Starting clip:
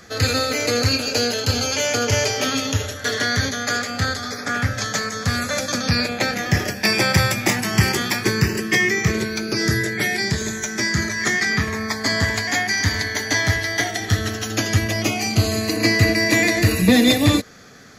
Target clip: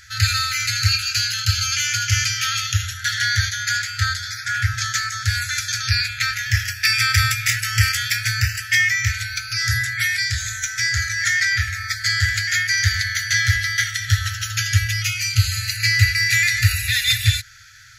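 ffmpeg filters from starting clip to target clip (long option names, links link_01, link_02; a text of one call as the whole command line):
ffmpeg -i in.wav -af "afftfilt=real='re*(1-between(b*sr/4096,120,1300))':imag='im*(1-between(b*sr/4096,120,1300))':win_size=4096:overlap=0.75,volume=2dB" out.wav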